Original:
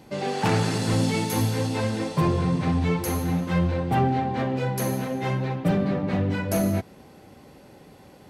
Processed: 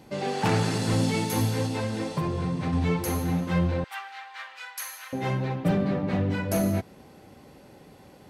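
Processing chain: 1.65–2.73 s: compression, threshold -23 dBFS, peak gain reduction 6 dB; 3.84–5.13 s: high-pass 1.2 kHz 24 dB/octave; trim -1.5 dB

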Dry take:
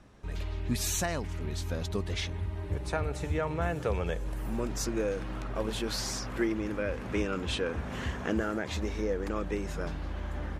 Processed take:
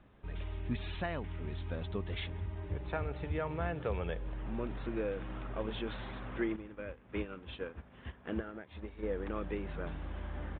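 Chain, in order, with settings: resampled via 8 kHz; 6.56–9.03 s: upward expansion 2.5:1, over -38 dBFS; trim -5 dB

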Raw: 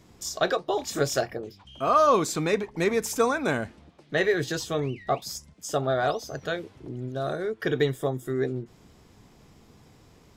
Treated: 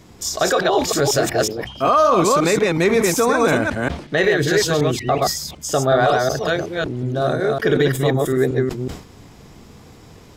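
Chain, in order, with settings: chunks repeated in reverse 185 ms, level -2.5 dB; peak limiter -16 dBFS, peak gain reduction 9.5 dB; decay stretcher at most 110 dB/s; trim +9 dB

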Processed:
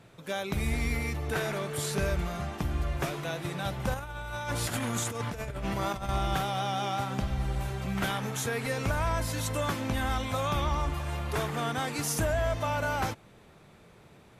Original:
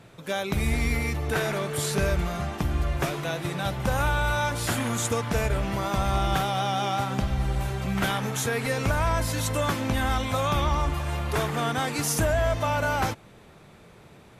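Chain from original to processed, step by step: 3.94–6.09 s: compressor with a negative ratio -28 dBFS, ratio -0.5; trim -4.5 dB

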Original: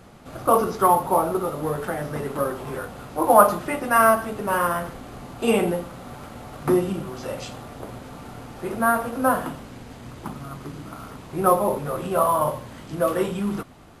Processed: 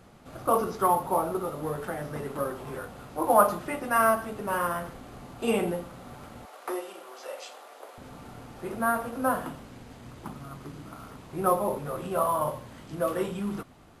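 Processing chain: 6.45–7.98 s: high-pass 460 Hz 24 dB/octave; trim -6 dB

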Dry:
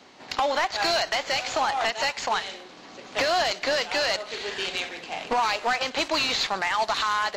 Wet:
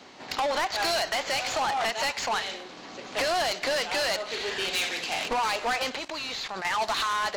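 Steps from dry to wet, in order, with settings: 4.72–5.27 s: treble shelf 3.1 kHz -> 2.1 kHz +11.5 dB; 5.96–6.65 s: level held to a coarse grid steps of 18 dB; saturation -25.5 dBFS, distortion -10 dB; trim +2.5 dB

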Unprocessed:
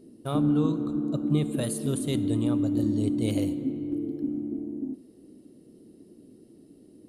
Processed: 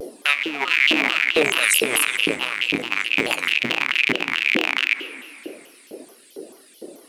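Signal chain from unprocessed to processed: rattle on loud lows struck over -37 dBFS, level -19 dBFS; reverb removal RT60 0.58 s; hum notches 50/100/150/200/250/300/350/400/450 Hz; compressor with a negative ratio -31 dBFS, ratio -0.5; LFO high-pass saw up 2.2 Hz 420–3200 Hz; 2.06–4.50 s: AM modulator 120 Hz, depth 70%; plate-style reverb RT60 2.4 s, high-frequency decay 0.75×, DRR 19 dB; loudness maximiser +23 dB; vibrato with a chosen wave saw down 4.6 Hz, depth 250 cents; trim -4 dB

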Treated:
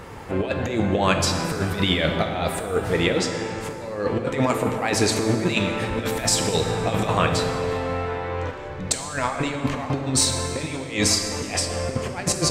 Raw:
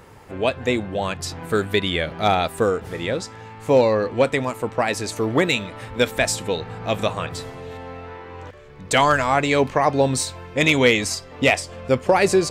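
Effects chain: treble shelf 9.4 kHz -6.5 dB; compressor with a negative ratio -25 dBFS, ratio -0.5; plate-style reverb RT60 2.8 s, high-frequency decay 0.6×, DRR 4 dB; trim +2 dB

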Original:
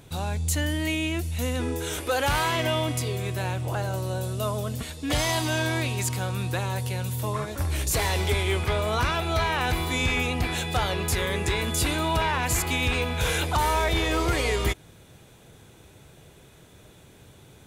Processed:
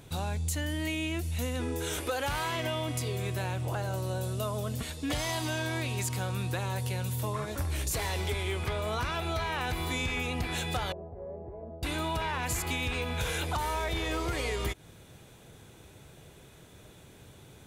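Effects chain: compression, threshold -27 dBFS, peak gain reduction 7.5 dB; 10.92–11.83 s: four-pole ladder low-pass 690 Hz, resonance 75%; trim -1.5 dB

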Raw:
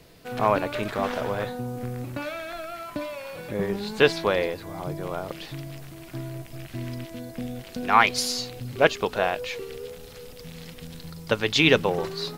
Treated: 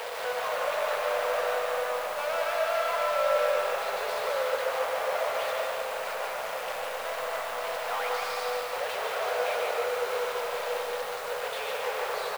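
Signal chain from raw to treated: one-bit comparator; tape spacing loss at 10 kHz 35 dB; in parallel at -11 dB: companded quantiser 2-bit; on the sum: elliptic high-pass 490 Hz, stop band 40 dB; on a send: feedback delay 1079 ms, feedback 45%, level -11 dB; on the sum: word length cut 8-bit, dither triangular; algorithmic reverb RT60 2.6 s, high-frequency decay 0.5×, pre-delay 90 ms, DRR 0 dB; bit-crushed delay 146 ms, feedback 55%, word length 7-bit, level -6 dB; trim -3 dB

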